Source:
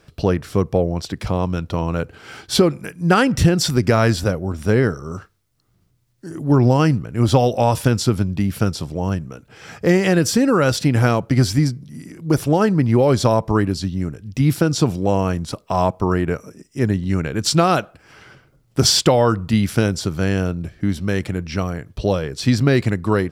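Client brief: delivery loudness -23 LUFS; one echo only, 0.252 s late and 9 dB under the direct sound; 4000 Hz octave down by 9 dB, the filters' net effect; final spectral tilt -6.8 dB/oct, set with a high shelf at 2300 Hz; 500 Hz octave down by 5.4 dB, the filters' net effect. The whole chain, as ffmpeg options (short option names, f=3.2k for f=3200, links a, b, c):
-af "equalizer=f=500:t=o:g=-6.5,highshelf=f=2.3k:g=-7.5,equalizer=f=4k:t=o:g=-4,aecho=1:1:252:0.355,volume=-2.5dB"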